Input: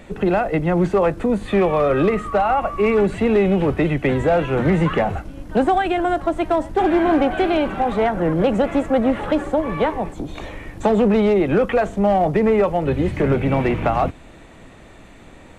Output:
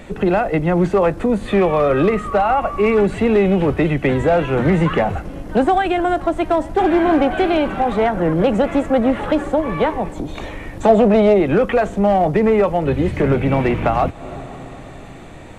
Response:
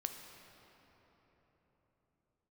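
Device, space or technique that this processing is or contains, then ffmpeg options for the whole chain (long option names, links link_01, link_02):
ducked reverb: -filter_complex "[0:a]asplit=3[link_01][link_02][link_03];[1:a]atrim=start_sample=2205[link_04];[link_02][link_04]afir=irnorm=-1:irlink=0[link_05];[link_03]apad=whole_len=687220[link_06];[link_05][link_06]sidechaincompress=threshold=-36dB:ratio=8:attack=16:release=141,volume=-5.5dB[link_07];[link_01][link_07]amix=inputs=2:normalize=0,asettb=1/sr,asplit=3[link_08][link_09][link_10];[link_08]atrim=end=10.884[link_11];[link_09]atrim=start=10.88:end=11.41,asetpts=PTS-STARTPTS,afade=type=in:duration=0.004:curve=qsin,afade=type=out:start_time=0.526:duration=0.004:curve=qsin,equalizer=frequency=650:width_type=o:width=0.31:gain=12[link_12];[link_10]atrim=start=11.406[link_13];[link_11][link_12]acrossfade=duration=0.004:curve1=hsin:curve2=qsin[link_14];[link_14][link_13]acrossfade=duration=0.004:curve1=qsin:curve2=hsin,volume=1.5dB"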